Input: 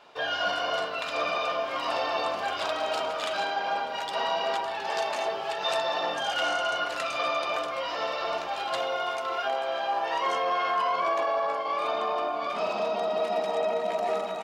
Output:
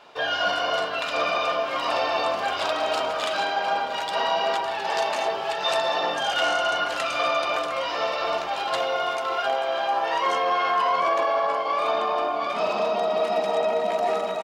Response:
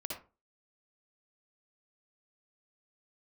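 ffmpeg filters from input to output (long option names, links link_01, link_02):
-af "aecho=1:1:707:0.224,volume=4dB"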